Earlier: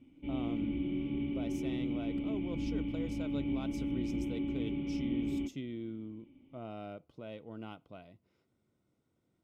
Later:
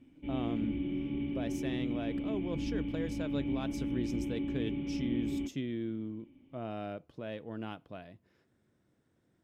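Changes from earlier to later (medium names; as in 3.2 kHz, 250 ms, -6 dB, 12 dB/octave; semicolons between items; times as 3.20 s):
speech +4.5 dB; master: remove Butterworth band-stop 1.7 kHz, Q 5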